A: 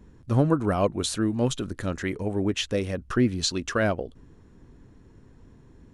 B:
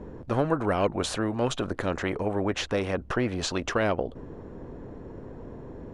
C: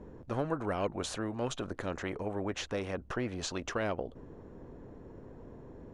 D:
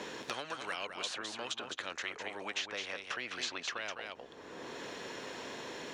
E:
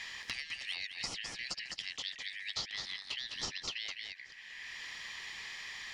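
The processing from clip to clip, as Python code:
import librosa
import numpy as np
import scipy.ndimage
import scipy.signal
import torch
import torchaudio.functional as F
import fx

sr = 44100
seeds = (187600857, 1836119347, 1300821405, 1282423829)

y1 = fx.lowpass(x, sr, hz=1000.0, slope=6)
y1 = fx.peak_eq(y1, sr, hz=530.0, db=10.0, octaves=1.5)
y1 = fx.spectral_comp(y1, sr, ratio=2.0)
y1 = y1 * 10.0 ** (-7.0 / 20.0)
y2 = fx.peak_eq(y1, sr, hz=6500.0, db=3.5, octaves=0.42)
y2 = y2 * 10.0 ** (-8.0 / 20.0)
y3 = fx.bandpass_q(y2, sr, hz=3500.0, q=0.95)
y3 = y3 + 10.0 ** (-7.5 / 20.0) * np.pad(y3, (int(204 * sr / 1000.0), 0))[:len(y3)]
y3 = fx.band_squash(y3, sr, depth_pct=100)
y3 = y3 * 10.0 ** (6.0 / 20.0)
y4 = fx.band_shuffle(y3, sr, order='4123')
y4 = y4 + 10.0 ** (-22.0 / 20.0) * np.pad(y4, (int(617 * sr / 1000.0), 0))[:len(y4)]
y4 = y4 * 10.0 ** (-1.0 / 20.0)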